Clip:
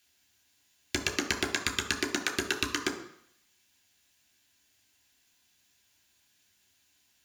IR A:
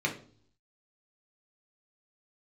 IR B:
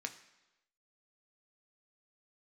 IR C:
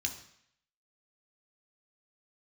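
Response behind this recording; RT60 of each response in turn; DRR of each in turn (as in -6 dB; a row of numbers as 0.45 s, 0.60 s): C; no single decay rate, 1.0 s, 0.65 s; -0.5 dB, 5.5 dB, 2.5 dB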